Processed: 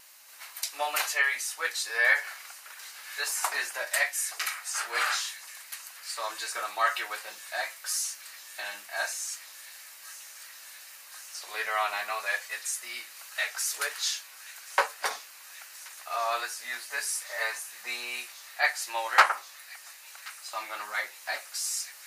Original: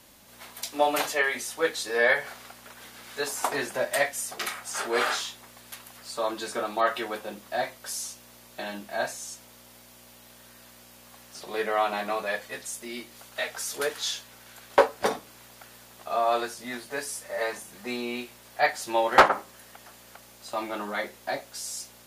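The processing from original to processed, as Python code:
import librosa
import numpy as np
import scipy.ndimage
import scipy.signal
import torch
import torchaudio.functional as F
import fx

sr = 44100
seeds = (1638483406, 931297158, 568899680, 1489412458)

p1 = scipy.signal.sosfilt(scipy.signal.butter(2, 1300.0, 'highpass', fs=sr, output='sos'), x)
p2 = fx.peak_eq(p1, sr, hz=3400.0, db=-8.5, octaves=0.2)
p3 = fx.rider(p2, sr, range_db=4, speed_s=2.0)
p4 = p2 + F.gain(torch.from_numpy(p3), -1.0).numpy()
p5 = fx.echo_wet_highpass(p4, sr, ms=1080, feedback_pct=85, hz=2500.0, wet_db=-17)
p6 = fx.vibrato(p5, sr, rate_hz=2.5, depth_cents=24.0)
y = F.gain(torch.from_numpy(p6), -3.0).numpy()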